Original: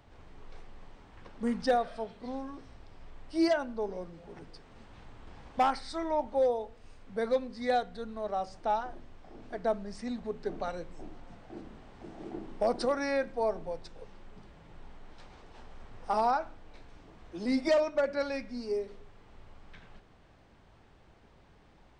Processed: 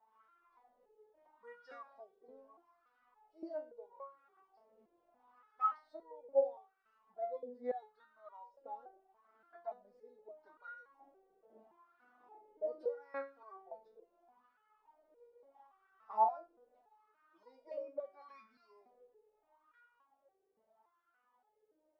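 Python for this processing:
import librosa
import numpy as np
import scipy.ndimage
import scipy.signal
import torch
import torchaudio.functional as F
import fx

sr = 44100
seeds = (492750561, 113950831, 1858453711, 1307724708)

y = fx.wah_lfo(x, sr, hz=0.77, low_hz=460.0, high_hz=1400.0, q=8.3)
y = fx.resonator_held(y, sr, hz=3.5, low_hz=220.0, high_hz=480.0)
y = y * librosa.db_to_amplitude(14.0)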